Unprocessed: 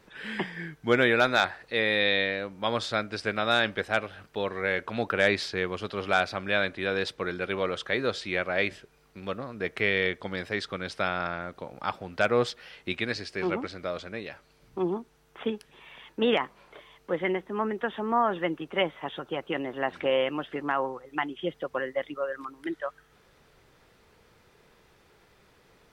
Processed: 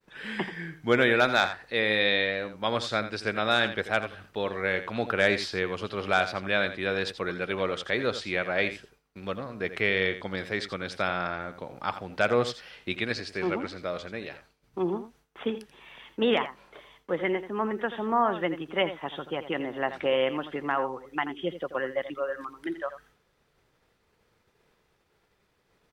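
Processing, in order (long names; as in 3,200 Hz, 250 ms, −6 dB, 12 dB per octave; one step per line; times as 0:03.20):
single-tap delay 84 ms −12 dB
downward expander −52 dBFS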